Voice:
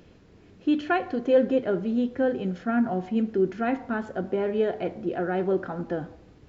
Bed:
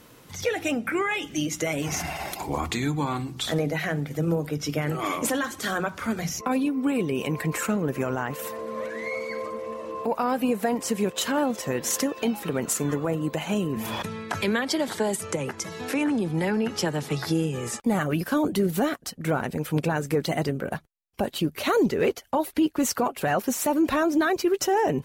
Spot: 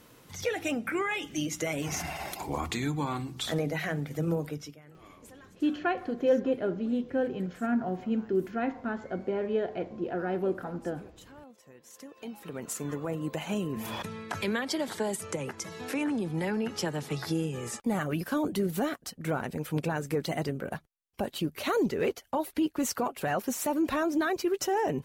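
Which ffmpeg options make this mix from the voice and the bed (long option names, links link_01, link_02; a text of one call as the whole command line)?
ffmpeg -i stem1.wav -i stem2.wav -filter_complex "[0:a]adelay=4950,volume=-4.5dB[link_01];[1:a]volume=16.5dB,afade=type=out:start_time=4.43:duration=0.33:silence=0.0794328,afade=type=in:start_time=11.93:duration=1.41:silence=0.0891251[link_02];[link_01][link_02]amix=inputs=2:normalize=0" out.wav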